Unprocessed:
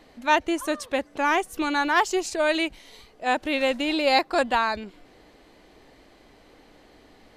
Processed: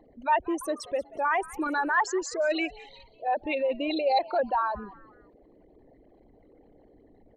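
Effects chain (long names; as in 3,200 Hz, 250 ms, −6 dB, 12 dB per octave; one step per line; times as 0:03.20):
spectral envelope exaggerated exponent 3
echo with shifted repeats 184 ms, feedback 38%, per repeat +110 Hz, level −20 dB
level −3.5 dB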